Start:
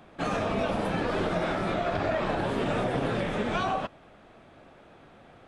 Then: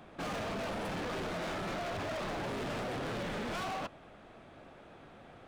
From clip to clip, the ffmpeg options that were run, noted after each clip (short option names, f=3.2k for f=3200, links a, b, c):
-af "volume=35dB,asoftclip=hard,volume=-35dB,volume=-1dB"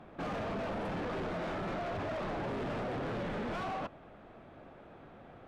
-af "lowpass=f=1.6k:p=1,volume=1.5dB"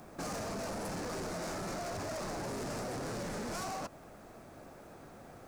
-af "acompressor=threshold=-40dB:ratio=3,aexciter=amount=13.3:drive=3.9:freq=4.9k,volume=1dB"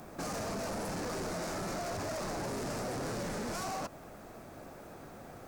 -filter_complex "[0:a]equalizer=f=16k:w=3.1:g=8.5,asplit=2[a][b];[b]alimiter=level_in=13dB:limit=-24dB:level=0:latency=1:release=30,volume=-13dB,volume=2dB[c];[a][c]amix=inputs=2:normalize=0,volume=-4dB"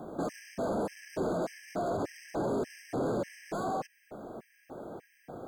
-af "equalizer=f=380:w=0.34:g=15,afftfilt=real='re*gt(sin(2*PI*1.7*pts/sr)*(1-2*mod(floor(b*sr/1024/1600),2)),0)':imag='im*gt(sin(2*PI*1.7*pts/sr)*(1-2*mod(floor(b*sr/1024/1600),2)),0)':win_size=1024:overlap=0.75,volume=-6dB"